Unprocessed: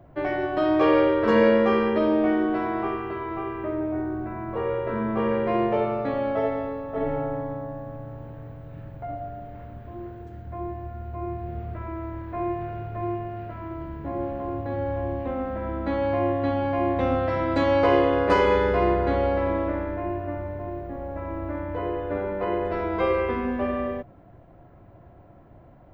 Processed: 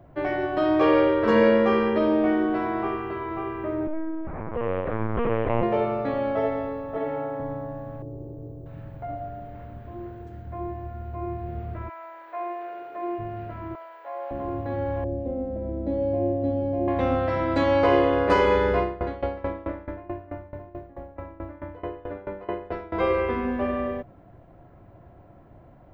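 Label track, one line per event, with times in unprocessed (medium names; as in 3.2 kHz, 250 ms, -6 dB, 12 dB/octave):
3.870000	5.630000	LPC vocoder at 8 kHz pitch kept
6.970000	7.400000	high-pass 330 Hz 6 dB/octave
8.020000	8.660000	FFT filter 150 Hz 0 dB, 230 Hz -4 dB, 360 Hz +13 dB, 520 Hz +1 dB, 2 kHz -28 dB, 6.2 kHz -4 dB
11.880000	13.180000	high-pass 740 Hz -> 280 Hz 24 dB/octave
13.750000	14.310000	steep high-pass 540 Hz
15.040000	16.880000	FFT filter 590 Hz 0 dB, 1.2 kHz -24 dB, 4.8 kHz -13 dB
18.790000	22.940000	sawtooth tremolo in dB decaying 4.6 Hz, depth 20 dB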